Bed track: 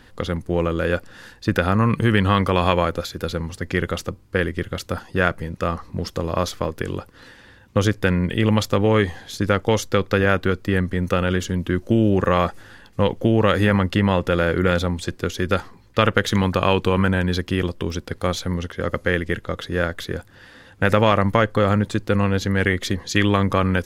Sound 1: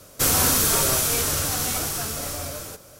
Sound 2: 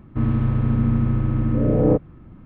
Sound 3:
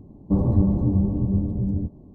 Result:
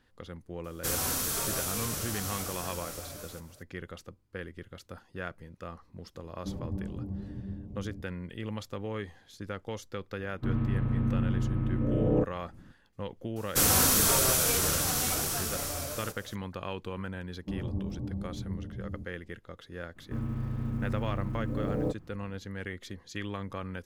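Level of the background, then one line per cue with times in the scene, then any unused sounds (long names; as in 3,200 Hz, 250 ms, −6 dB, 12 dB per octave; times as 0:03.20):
bed track −19 dB
0:00.64: mix in 1 −11.5 dB
0:06.15: mix in 3 −17 dB
0:10.27: mix in 2 −9 dB
0:13.36: mix in 1 −4 dB + floating-point word with a short mantissa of 6 bits
0:17.17: mix in 3 −15.5 dB
0:19.95: mix in 2 −14 dB, fades 0.02 s + mu-law and A-law mismatch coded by mu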